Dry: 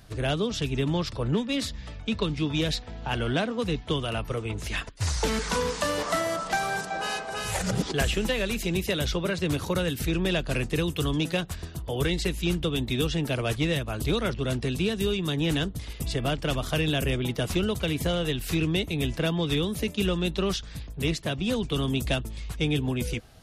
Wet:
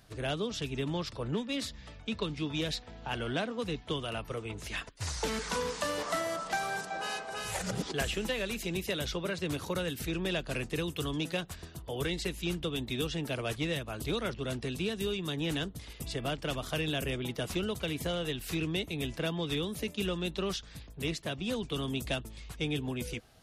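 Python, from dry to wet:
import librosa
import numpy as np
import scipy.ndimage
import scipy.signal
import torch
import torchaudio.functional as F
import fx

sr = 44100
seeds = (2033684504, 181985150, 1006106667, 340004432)

y = fx.low_shelf(x, sr, hz=150.0, db=-6.5)
y = y * librosa.db_to_amplitude(-5.5)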